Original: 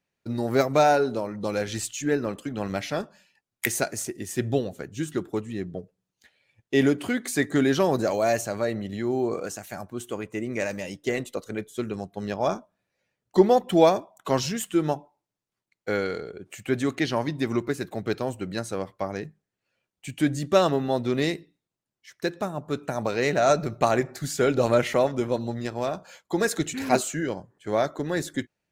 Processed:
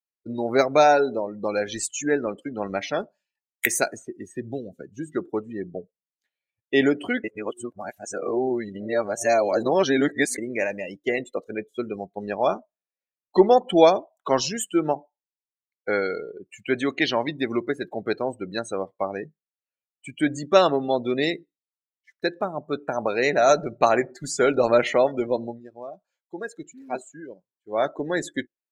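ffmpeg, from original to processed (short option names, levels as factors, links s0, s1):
-filter_complex "[0:a]asettb=1/sr,asplit=3[s0][s1][s2];[s0]atrim=end=3.914[s3];[s1]atrim=start=3.91:end=5.13,asetpts=PTS-STARTPTS,afade=t=in:d=0.004:c=qsin,afade=t=out:st=1.216:d=0.004:c=qsin,acrossover=split=310|3500[s4][s5][s6];[s4]acompressor=threshold=0.0398:ratio=4[s7];[s5]acompressor=threshold=0.0112:ratio=4[s8];[s6]acompressor=threshold=0.00708:ratio=4[s9];[s7][s8][s9]amix=inputs=3:normalize=0[s10];[s2]atrim=start=5.126[s11];[s3][s10]acrossfade=d=0.004:c1=hsin:c2=qsin[s12];[s12][s11]acrossfade=d=0.004:c1=qsin:c2=hsin,asettb=1/sr,asplit=3[s13][s14][s15];[s13]atrim=end=16.474[s16];[s14]atrim=start=16.47:end=17.35,asetpts=PTS-STARTPTS,afade=t=in:d=0.004:c=qsin,afade=t=out:st=0.876:d=0.004:c=qsin,adynamicequalizer=threshold=0.00562:dfrequency=2900:dqfactor=1.2:tfrequency=2900:tqfactor=1.2:attack=5:release=100:ratio=0.375:range=2:mode=boostabove:tftype=bell[s17];[s15]atrim=start=17.346[s18];[s16][s17]acrossfade=d=0.004:c1=hsin:c2=qsin[s19];[s19][s18]acrossfade=d=0.004:c1=qsin:c2=hsin,asplit=5[s20][s21][s22][s23][s24];[s20]atrim=end=7.242[s25];[s21]atrim=start=7.238:end=10.382,asetpts=PTS-STARTPTS,areverse[s26];[s22]atrim=start=10.378:end=25.61,asetpts=PTS-STARTPTS,afade=t=out:st=15.062:d=0.17:silence=0.266073[s27];[s23]atrim=start=25.61:end=27.69,asetpts=PTS-STARTPTS,volume=0.266[s28];[s24]atrim=start=27.69,asetpts=PTS-STARTPTS,afade=t=in:d=0.17:silence=0.266073[s29];[s25][s26]acrossfade=d=0.004:c1=hsin:c2=hsin[s30];[s27][s28][s29]concat=n=3:v=0:a=1[s31];[s30][s31]acrossfade=d=0.004:c1=hsin:c2=hsin,adynamicequalizer=threshold=0.01:dfrequency=1100:dqfactor=1.7:tfrequency=1100:tqfactor=1.7:attack=5:release=100:ratio=0.375:range=2:mode=cutabove:tftype=bell,afftdn=nr=27:nf=-36,equalizer=f=95:w=0.56:g=-14.5,volume=1.78"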